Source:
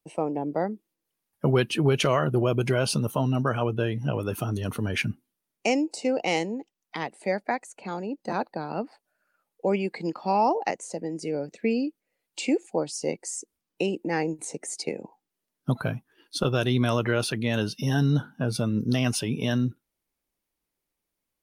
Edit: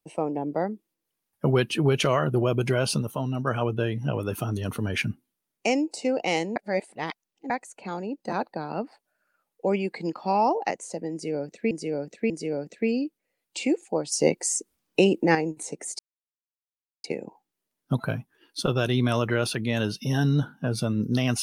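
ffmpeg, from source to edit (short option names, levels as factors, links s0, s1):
-filter_complex "[0:a]asplit=10[s0][s1][s2][s3][s4][s5][s6][s7][s8][s9];[s0]atrim=end=3.022[s10];[s1]atrim=start=3.018:end=3.472,asetpts=PTS-STARTPTS,volume=0.631[s11];[s2]atrim=start=3.468:end=6.562[s12];[s3]atrim=start=6.558:end=7.502,asetpts=PTS-STARTPTS,areverse[s13];[s4]atrim=start=7.498:end=11.712[s14];[s5]atrim=start=11.118:end=11.712[s15];[s6]atrim=start=11.118:end=12.942[s16];[s7]atrim=start=12.938:end=14.172,asetpts=PTS-STARTPTS,volume=2.37[s17];[s8]atrim=start=14.168:end=14.81,asetpts=PTS-STARTPTS,afade=t=out:st=0.638:d=0.004:c=hsin,apad=pad_dur=1.05[s18];[s9]atrim=start=14.81,asetpts=PTS-STARTPTS,afade=t=in:d=0.004:c=hsin[s19];[s10][s11]acrossfade=d=0.004:c1=hsin:c2=hsin[s20];[s20][s12]acrossfade=d=0.004:c1=hsin:c2=hsin[s21];[s21][s13]acrossfade=d=0.004:c1=hsin:c2=hsin[s22];[s22][s14]acrossfade=d=0.004:c1=hsin:c2=hsin[s23];[s23][s15]acrossfade=d=0.004:c1=hsin:c2=hsin[s24];[s24][s16]acrossfade=d=0.004:c1=hsin:c2=hsin[s25];[s25][s17]acrossfade=d=0.004:c1=hsin:c2=hsin[s26];[s18][s19]concat=n=2:v=0:a=1[s27];[s26][s27]acrossfade=d=0.004:c1=hsin:c2=hsin"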